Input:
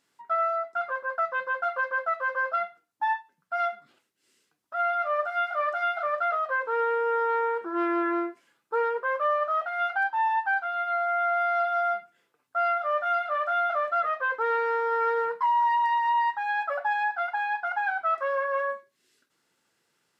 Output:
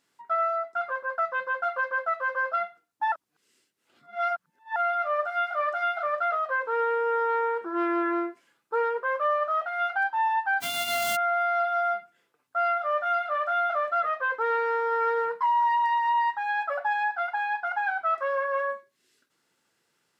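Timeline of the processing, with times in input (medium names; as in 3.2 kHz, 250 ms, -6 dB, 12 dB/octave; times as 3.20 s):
3.12–4.76 s: reverse
10.60–11.15 s: formants flattened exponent 0.1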